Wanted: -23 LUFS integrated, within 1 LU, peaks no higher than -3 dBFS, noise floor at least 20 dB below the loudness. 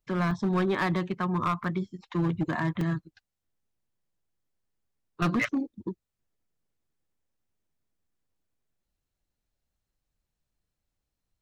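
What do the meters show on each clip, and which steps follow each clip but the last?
clipped samples 0.9%; clipping level -21.0 dBFS; dropouts 3; longest dropout 2.4 ms; loudness -29.0 LUFS; peak level -21.0 dBFS; loudness target -23.0 LUFS
-> clip repair -21 dBFS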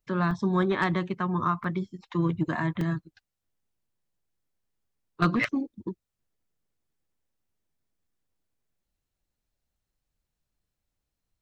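clipped samples 0.0%; dropouts 3; longest dropout 2.4 ms
-> interpolate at 0.31/1.64/2.81 s, 2.4 ms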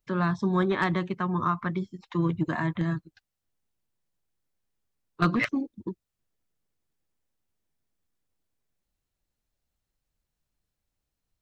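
dropouts 0; loudness -28.0 LUFS; peak level -12.0 dBFS; loudness target -23.0 LUFS
-> trim +5 dB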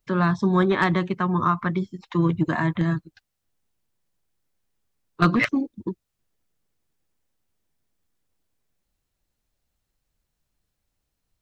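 loudness -23.0 LUFS; peak level -7.0 dBFS; noise floor -80 dBFS

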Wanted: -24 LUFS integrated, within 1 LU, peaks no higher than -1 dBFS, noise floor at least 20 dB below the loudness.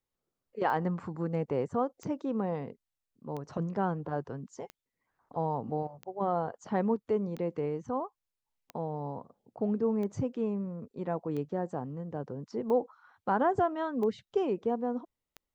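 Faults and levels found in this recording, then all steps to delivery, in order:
clicks found 12; loudness -33.0 LUFS; peak level -15.5 dBFS; loudness target -24.0 LUFS
-> de-click; trim +9 dB

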